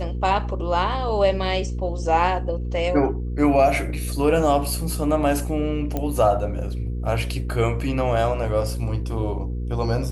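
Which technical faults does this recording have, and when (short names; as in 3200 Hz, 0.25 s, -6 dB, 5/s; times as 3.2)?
hum 60 Hz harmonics 8 -27 dBFS
5.97 pop -12 dBFS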